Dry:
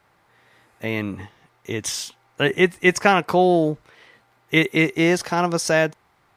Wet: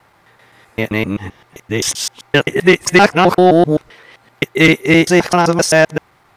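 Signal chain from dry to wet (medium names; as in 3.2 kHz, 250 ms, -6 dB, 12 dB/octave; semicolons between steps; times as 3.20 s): time reversed locally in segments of 130 ms; sine folder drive 5 dB, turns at -1.5 dBFS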